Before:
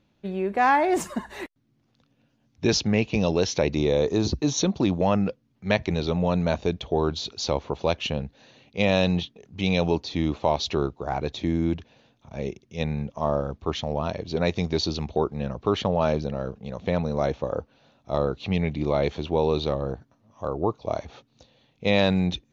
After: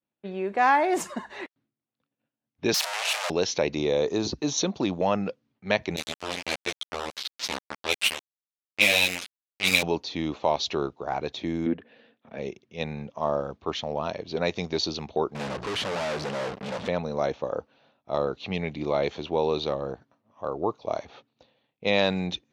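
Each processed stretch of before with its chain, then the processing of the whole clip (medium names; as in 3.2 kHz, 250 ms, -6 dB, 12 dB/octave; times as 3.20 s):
2.74–3.30 s: one-bit comparator + elliptic high-pass 620 Hz, stop band 70 dB
5.96–9.83 s: resonant high shelf 1.7 kHz +8 dB, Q 3 + small samples zeroed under -15.5 dBFS + three-phase chorus
11.66–12.38 s: low-pass that closes with the level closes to 1.6 kHz, closed at -26 dBFS + cabinet simulation 120–5100 Hz, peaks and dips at 130 Hz -4 dB, 240 Hz +9 dB, 470 Hz +8 dB, 930 Hz -5 dB, 1.8 kHz +10 dB, 2.9 kHz +3 dB
15.35–16.88 s: hum notches 60/120/180 Hz + waveshaping leveller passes 5 + overload inside the chain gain 26.5 dB
whole clip: expander -55 dBFS; level-controlled noise filter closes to 2.9 kHz, open at -19.5 dBFS; high-pass 340 Hz 6 dB/octave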